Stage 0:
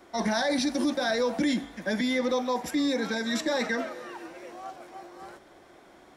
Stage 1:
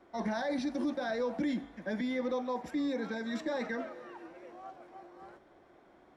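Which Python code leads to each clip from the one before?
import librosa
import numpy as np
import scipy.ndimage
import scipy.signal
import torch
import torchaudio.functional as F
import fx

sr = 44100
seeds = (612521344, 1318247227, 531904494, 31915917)

y = fx.lowpass(x, sr, hz=1600.0, slope=6)
y = F.gain(torch.from_numpy(y), -6.0).numpy()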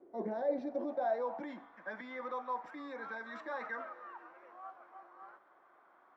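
y = fx.filter_sweep_bandpass(x, sr, from_hz=390.0, to_hz=1200.0, start_s=0.14, end_s=1.8, q=2.8)
y = F.gain(torch.from_numpy(y), 5.5).numpy()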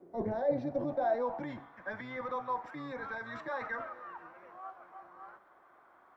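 y = fx.octave_divider(x, sr, octaves=1, level_db=-6.0)
y = F.gain(torch.from_numpy(y), 3.0).numpy()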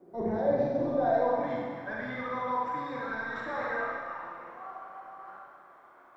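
y = fx.rev_schroeder(x, sr, rt60_s=1.8, comb_ms=32, drr_db=-4.0)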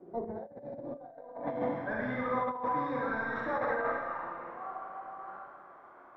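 y = fx.lowpass(x, sr, hz=1400.0, slope=6)
y = fx.dynamic_eq(y, sr, hz=560.0, q=0.81, threshold_db=-36.0, ratio=4.0, max_db=4)
y = fx.over_compress(y, sr, threshold_db=-33.0, ratio=-0.5)
y = F.gain(torch.from_numpy(y), -1.0).numpy()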